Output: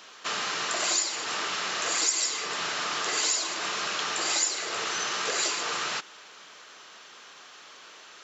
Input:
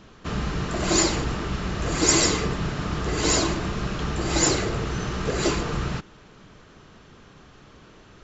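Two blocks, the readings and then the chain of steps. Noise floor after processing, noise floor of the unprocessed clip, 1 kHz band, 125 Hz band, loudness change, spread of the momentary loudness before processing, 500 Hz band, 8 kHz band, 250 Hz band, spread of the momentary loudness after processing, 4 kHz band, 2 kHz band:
-50 dBFS, -51 dBFS, -1.5 dB, -28.0 dB, -3.0 dB, 9 LU, -10.0 dB, no reading, -18.5 dB, 22 LU, +1.0 dB, +0.5 dB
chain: high-pass 670 Hz 12 dB/octave; treble shelf 2.4 kHz +10 dB; compression 6:1, threshold -27 dBFS, peak gain reduction 19 dB; trim +2 dB

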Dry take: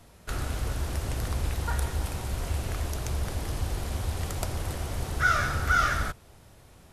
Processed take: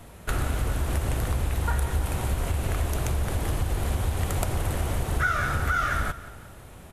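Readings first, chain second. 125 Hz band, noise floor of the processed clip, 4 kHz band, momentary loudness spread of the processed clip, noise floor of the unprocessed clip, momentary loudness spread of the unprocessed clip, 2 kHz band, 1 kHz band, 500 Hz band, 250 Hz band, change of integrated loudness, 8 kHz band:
+4.0 dB, -46 dBFS, -0.5 dB, 6 LU, -54 dBFS, 10 LU, -0.5 dB, +0.5 dB, +4.0 dB, +4.5 dB, +2.5 dB, +1.5 dB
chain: peaking EQ 5.1 kHz -8 dB 0.78 oct; compression, threshold -30 dBFS, peak gain reduction 11 dB; feedback delay 177 ms, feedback 47%, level -16.5 dB; trim +8 dB

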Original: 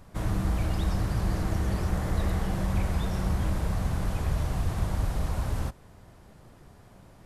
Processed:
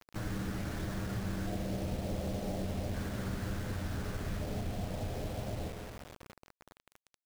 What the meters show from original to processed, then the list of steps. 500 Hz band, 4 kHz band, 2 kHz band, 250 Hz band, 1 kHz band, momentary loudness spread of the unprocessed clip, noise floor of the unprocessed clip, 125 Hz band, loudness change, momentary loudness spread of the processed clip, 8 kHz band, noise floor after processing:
-3.0 dB, -4.0 dB, -5.0 dB, -5.0 dB, -8.0 dB, 2 LU, -53 dBFS, -9.0 dB, -8.5 dB, 6 LU, -5.5 dB, under -85 dBFS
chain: comb filter that takes the minimum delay 9.8 ms; LFO low-pass square 0.34 Hz 700–1600 Hz; graphic EQ 250/500/1000/4000 Hz +4/+4/-7/+8 dB; spring tank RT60 1.7 s, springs 33/52 ms, chirp 30 ms, DRR 6 dB; compression 2:1, threshold -33 dBFS, peak gain reduction 7.5 dB; bit crusher 7-bit; trim -4.5 dB

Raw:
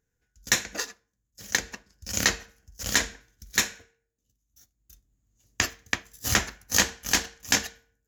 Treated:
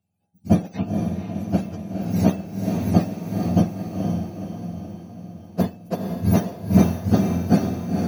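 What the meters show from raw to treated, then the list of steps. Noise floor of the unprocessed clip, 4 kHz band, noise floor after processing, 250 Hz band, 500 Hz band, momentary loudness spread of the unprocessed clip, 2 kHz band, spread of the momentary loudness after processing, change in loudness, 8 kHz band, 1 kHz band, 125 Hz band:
-80 dBFS, -14.5 dB, -56 dBFS, +20.0 dB, +12.5 dB, 12 LU, -14.0 dB, 13 LU, +3.5 dB, -16.5 dB, +5.0 dB, +18.5 dB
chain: spectrum inverted on a logarithmic axis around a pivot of 1.1 kHz; echo that smears into a reverb 486 ms, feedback 53%, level -4 dB

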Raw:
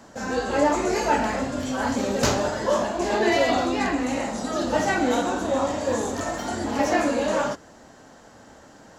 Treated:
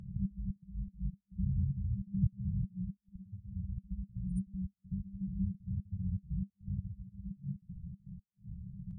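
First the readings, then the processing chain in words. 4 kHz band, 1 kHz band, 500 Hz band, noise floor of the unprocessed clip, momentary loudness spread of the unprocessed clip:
under -40 dB, under -40 dB, under -40 dB, -49 dBFS, 6 LU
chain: spectral gate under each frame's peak -20 dB strong; compression, threshold -32 dBFS, peak gain reduction 15.5 dB; trance gate "xx.x.xx.x..xxx" 119 bpm -60 dB; FFT band-reject 200–9100 Hz; reverse echo 71 ms -17.5 dB; trim +14 dB

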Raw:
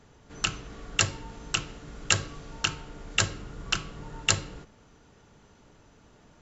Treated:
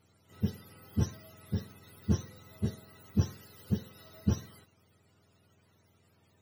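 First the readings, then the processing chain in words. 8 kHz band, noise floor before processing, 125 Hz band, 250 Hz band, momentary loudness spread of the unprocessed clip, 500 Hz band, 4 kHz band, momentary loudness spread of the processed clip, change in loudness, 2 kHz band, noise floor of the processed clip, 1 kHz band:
no reading, -58 dBFS, +3.5 dB, +7.0 dB, 16 LU, -4.0 dB, -22.5 dB, 18 LU, -6.5 dB, -24.0 dB, -68 dBFS, -16.0 dB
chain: spectrum inverted on a logarithmic axis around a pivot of 760 Hz; trim -8.5 dB

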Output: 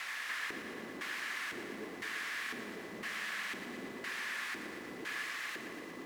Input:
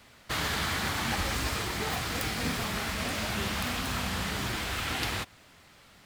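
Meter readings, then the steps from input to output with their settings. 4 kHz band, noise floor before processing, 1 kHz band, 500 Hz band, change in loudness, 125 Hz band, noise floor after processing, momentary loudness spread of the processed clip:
-12.0 dB, -57 dBFS, -11.5 dB, -9.0 dB, -9.0 dB, -24.5 dB, -46 dBFS, 6 LU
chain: bass shelf 130 Hz -10.5 dB; compression 10:1, threshold -44 dBFS, peak gain reduction 17 dB; word length cut 6-bit, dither triangular; LFO band-pass square 0.99 Hz 350–1900 Hz; whistle 2 kHz -67 dBFS; small resonant body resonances 220/1100/1700 Hz, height 7 dB, ringing for 25 ms; bit-crushed delay 116 ms, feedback 80%, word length 11-bit, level -9.5 dB; trim +5.5 dB

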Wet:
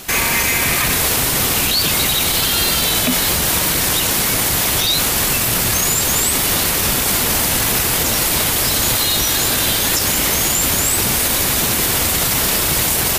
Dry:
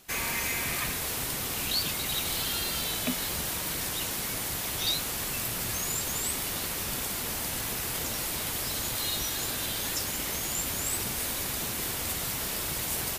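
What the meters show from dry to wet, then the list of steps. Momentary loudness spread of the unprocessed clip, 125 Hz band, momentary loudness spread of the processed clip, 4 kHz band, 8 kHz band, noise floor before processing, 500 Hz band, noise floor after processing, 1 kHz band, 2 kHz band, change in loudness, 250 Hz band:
3 LU, +15.5 dB, 1 LU, +15.0 dB, +15.5 dB, -33 dBFS, +15.5 dB, -17 dBFS, +15.5 dB, +15.0 dB, +15.0 dB, +15.0 dB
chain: loudness maximiser +28 dB; trim -6 dB

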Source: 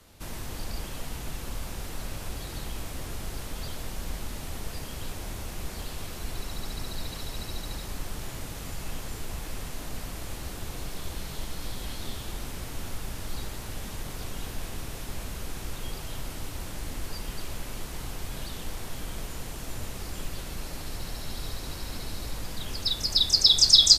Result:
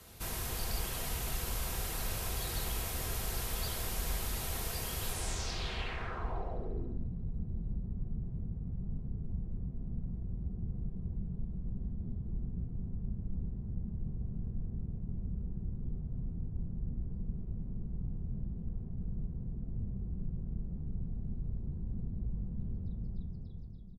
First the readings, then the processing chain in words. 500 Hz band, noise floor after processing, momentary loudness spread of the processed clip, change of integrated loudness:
-5.0 dB, -43 dBFS, 5 LU, -8.0 dB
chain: fade out at the end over 1.07 s; delay 726 ms -12.5 dB; dynamic bell 190 Hz, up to -5 dB, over -52 dBFS, Q 0.74; comb of notches 290 Hz; low-pass sweep 13 kHz -> 190 Hz, 5.06–7.10 s; trim +1.5 dB

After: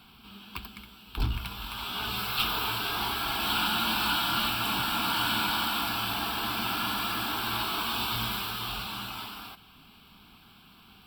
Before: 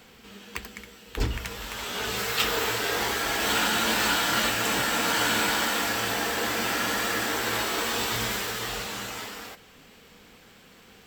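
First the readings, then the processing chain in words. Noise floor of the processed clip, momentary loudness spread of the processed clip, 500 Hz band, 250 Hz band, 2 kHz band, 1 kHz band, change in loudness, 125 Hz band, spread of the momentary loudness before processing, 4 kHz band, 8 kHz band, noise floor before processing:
-55 dBFS, 15 LU, -11.5 dB, -3.5 dB, -6.0 dB, -1.5 dB, -3.0 dB, -0.5 dB, 15 LU, -1.0 dB, -11.0 dB, -53 dBFS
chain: valve stage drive 20 dB, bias 0.45; static phaser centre 1.9 kHz, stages 6; trim +2.5 dB

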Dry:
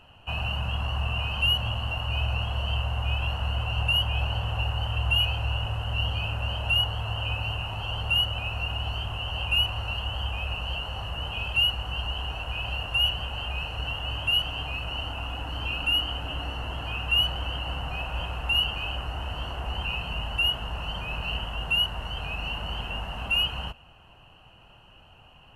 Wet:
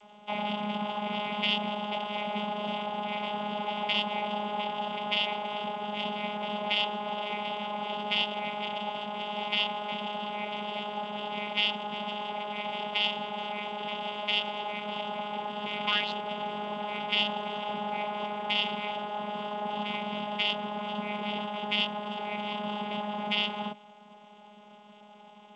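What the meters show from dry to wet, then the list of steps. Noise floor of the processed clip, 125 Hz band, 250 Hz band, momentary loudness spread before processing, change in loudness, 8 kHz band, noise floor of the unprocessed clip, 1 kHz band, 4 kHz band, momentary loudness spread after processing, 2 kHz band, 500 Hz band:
-53 dBFS, -17.5 dB, +7.0 dB, 9 LU, -4.0 dB, no reading, -53 dBFS, +5.0 dB, -5.5 dB, 7 LU, -4.5 dB, +5.5 dB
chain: peaking EQ 750 Hz +9 dB 0.58 oct; painted sound rise, 15.86–16.12 s, 840–5000 Hz -31 dBFS; vocoder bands 16, saw 208 Hz; trim -2.5 dB; G.722 64 kbps 16 kHz

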